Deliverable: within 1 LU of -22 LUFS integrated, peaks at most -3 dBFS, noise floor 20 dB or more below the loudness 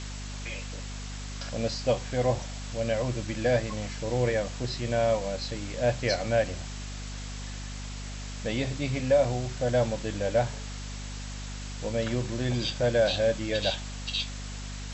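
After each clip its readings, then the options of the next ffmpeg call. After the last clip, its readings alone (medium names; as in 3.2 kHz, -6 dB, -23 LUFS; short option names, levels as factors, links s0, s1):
hum 50 Hz; highest harmonic 250 Hz; hum level -35 dBFS; noise floor -37 dBFS; noise floor target -50 dBFS; loudness -30.0 LUFS; peak level -12.5 dBFS; loudness target -22.0 LUFS
-> -af "bandreject=f=50:t=h:w=4,bandreject=f=100:t=h:w=4,bandreject=f=150:t=h:w=4,bandreject=f=200:t=h:w=4,bandreject=f=250:t=h:w=4"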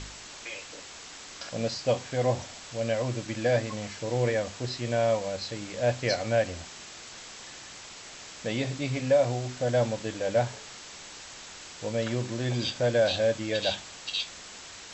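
hum not found; noise floor -45 dBFS; noise floor target -49 dBFS
-> -af "afftdn=nr=6:nf=-45"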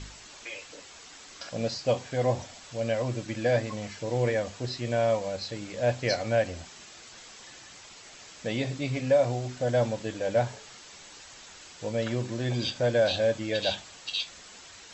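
noise floor -49 dBFS; loudness -29.0 LUFS; peak level -13.0 dBFS; loudness target -22.0 LUFS
-> -af "volume=2.24"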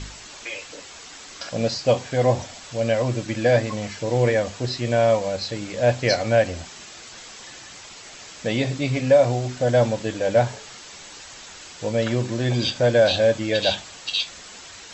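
loudness -22.0 LUFS; peak level -6.0 dBFS; noise floor -42 dBFS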